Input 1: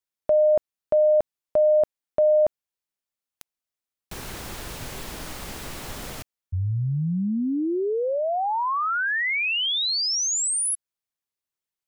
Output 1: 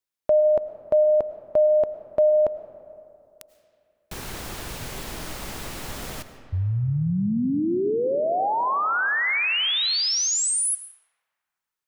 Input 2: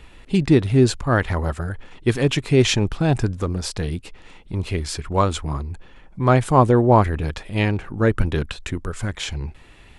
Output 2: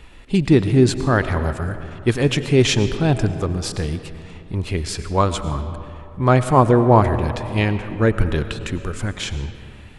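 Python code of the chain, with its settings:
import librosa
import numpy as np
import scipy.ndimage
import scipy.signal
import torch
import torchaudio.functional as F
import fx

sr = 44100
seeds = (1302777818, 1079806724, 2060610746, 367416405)

y = fx.rev_freeverb(x, sr, rt60_s=2.7, hf_ratio=0.5, predelay_ms=65, drr_db=10.5)
y = y * librosa.db_to_amplitude(1.0)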